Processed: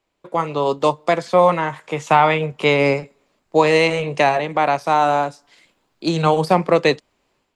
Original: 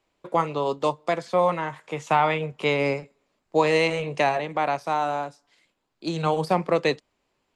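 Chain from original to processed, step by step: AGC gain up to 13 dB; gain -1 dB

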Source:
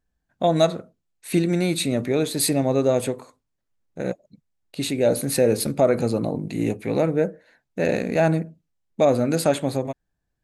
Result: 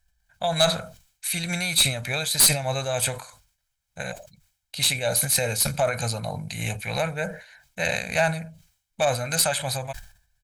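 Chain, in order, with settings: passive tone stack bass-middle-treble 10-0-10; comb 1.3 ms, depth 51%; in parallel at -2 dB: compressor, threshold -38 dBFS, peak gain reduction 18 dB; on the sum: tremolo 3.3 Hz, depth 35%; one-sided clip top -22.5 dBFS; sustainer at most 110 dB/s; gain +7.5 dB

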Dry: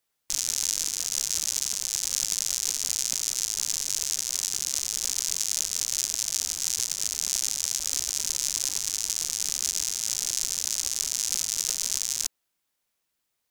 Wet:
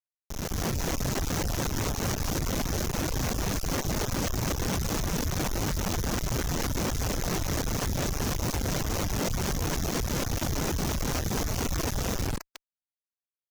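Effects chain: tracing distortion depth 0.067 ms; limiter -15.5 dBFS, peak gain reduction 7 dB; high shelf 5100 Hz +5 dB; thinning echo 0.149 s, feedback 47%, high-pass 330 Hz, level -17 dB; Schroeder reverb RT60 0.35 s, combs from 32 ms, DRR 14.5 dB; tremolo saw up 4.2 Hz, depth 60%; Schmitt trigger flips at -38 dBFS; AGC gain up to 8 dB; reverb removal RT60 0.64 s

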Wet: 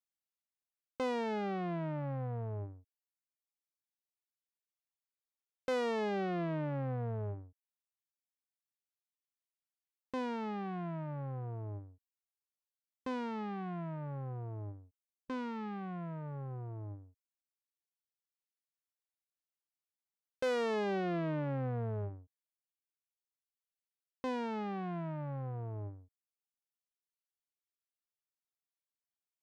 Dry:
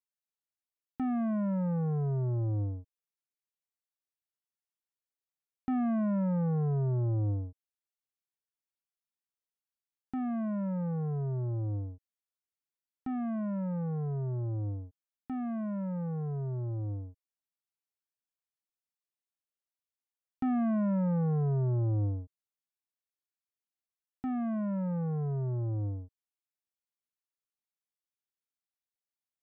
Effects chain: self-modulated delay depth 0.88 ms; reverb removal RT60 2 s; gain -2.5 dB

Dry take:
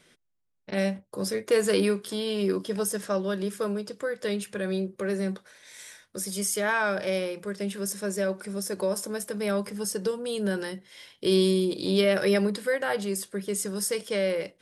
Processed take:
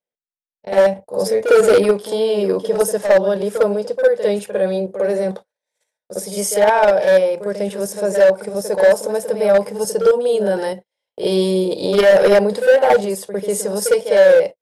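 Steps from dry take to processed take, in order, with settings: gate -40 dBFS, range -40 dB; band shelf 640 Hz +13.5 dB 1.3 oct; in parallel at +2 dB: level quantiser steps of 15 dB; on the sum: hard clip -7.5 dBFS, distortion -12 dB; reverse echo 54 ms -9 dB

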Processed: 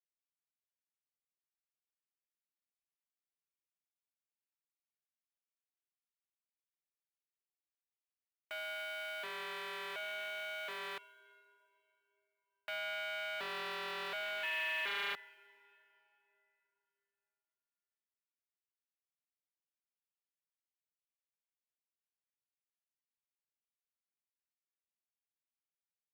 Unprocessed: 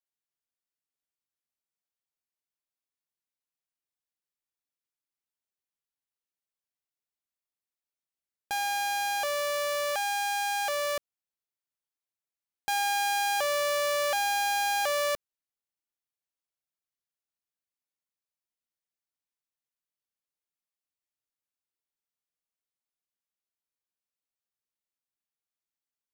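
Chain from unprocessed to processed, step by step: 14.43–15.14 sample sorter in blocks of 16 samples; mistuned SSB -180 Hz 210–3000 Hz; in parallel at -12 dB: sample gate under -39 dBFS; on the sum: differentiator; on a send at -17.5 dB: reverb RT60 3.4 s, pre-delay 32 ms; on the sum: Doppler distortion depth 0.21 ms; gain +2.5 dB

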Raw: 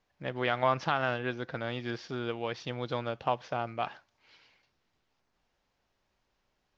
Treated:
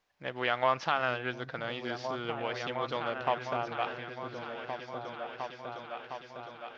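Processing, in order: low shelf 370 Hz -10 dB; repeats that get brighter 0.709 s, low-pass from 200 Hz, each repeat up 2 oct, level -3 dB; Doppler distortion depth 0.1 ms; gain +1.5 dB

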